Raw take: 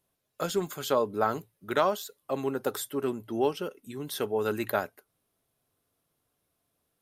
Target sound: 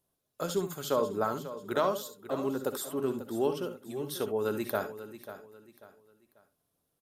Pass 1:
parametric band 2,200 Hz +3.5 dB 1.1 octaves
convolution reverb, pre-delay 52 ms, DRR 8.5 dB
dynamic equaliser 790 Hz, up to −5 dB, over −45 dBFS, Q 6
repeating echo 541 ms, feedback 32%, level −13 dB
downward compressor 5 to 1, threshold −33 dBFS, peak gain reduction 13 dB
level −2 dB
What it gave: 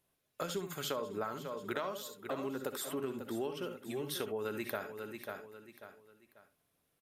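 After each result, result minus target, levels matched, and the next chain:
downward compressor: peak gain reduction +13 dB; 2,000 Hz band +5.0 dB
parametric band 2,200 Hz +3.5 dB 1.1 octaves
convolution reverb, pre-delay 52 ms, DRR 8.5 dB
dynamic equaliser 790 Hz, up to −5 dB, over −45 dBFS, Q 6
repeating echo 541 ms, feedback 32%, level −13 dB
level −2 dB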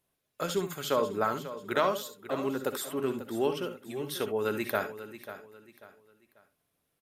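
2,000 Hz band +4.5 dB
parametric band 2,200 Hz −6 dB 1.1 octaves
convolution reverb, pre-delay 52 ms, DRR 8.5 dB
dynamic equaliser 790 Hz, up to −5 dB, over −45 dBFS, Q 6
repeating echo 541 ms, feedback 32%, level −13 dB
level −2 dB

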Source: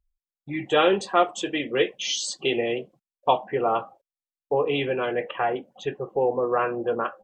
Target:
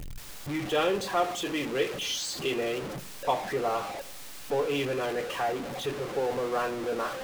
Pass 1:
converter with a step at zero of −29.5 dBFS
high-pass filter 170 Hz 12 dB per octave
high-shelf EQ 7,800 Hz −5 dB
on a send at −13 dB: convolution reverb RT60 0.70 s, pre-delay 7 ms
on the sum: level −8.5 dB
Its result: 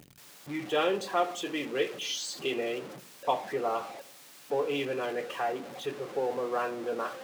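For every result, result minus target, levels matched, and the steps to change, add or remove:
125 Hz band −6.0 dB; converter with a step at zero: distortion −5 dB
remove: high-pass filter 170 Hz 12 dB per octave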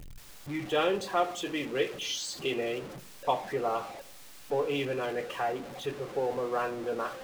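converter with a step at zero: distortion −5 dB
change: converter with a step at zero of −22.5 dBFS

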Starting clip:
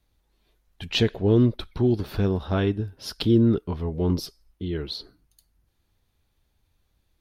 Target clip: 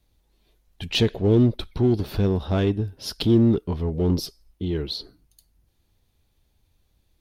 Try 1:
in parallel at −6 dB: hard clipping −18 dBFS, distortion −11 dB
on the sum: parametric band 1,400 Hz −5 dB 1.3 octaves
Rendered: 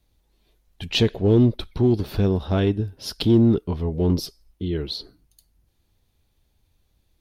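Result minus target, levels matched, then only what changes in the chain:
hard clipping: distortion −6 dB
change: hard clipping −25 dBFS, distortion −5 dB

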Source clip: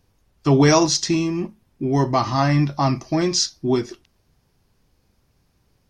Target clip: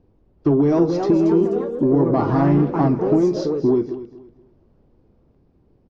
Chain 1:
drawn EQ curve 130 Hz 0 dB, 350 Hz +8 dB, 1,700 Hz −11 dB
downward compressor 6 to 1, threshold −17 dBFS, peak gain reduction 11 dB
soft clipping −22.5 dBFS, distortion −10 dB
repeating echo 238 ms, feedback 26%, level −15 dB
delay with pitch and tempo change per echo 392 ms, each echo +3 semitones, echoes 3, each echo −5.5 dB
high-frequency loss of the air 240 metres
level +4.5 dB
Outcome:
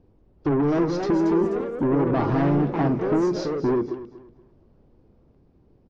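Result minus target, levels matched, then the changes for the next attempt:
soft clipping: distortion +13 dB
change: soft clipping −12 dBFS, distortion −23 dB

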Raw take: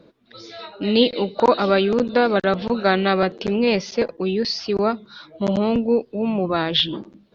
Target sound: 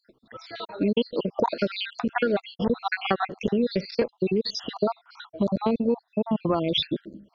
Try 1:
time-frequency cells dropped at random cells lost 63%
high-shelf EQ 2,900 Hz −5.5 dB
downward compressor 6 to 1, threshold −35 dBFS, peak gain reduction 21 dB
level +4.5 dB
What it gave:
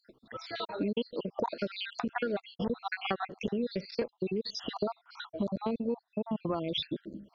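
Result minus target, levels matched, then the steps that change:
downward compressor: peak gain reduction +9 dB
change: downward compressor 6 to 1, threshold −24.5 dBFS, peak gain reduction 12 dB

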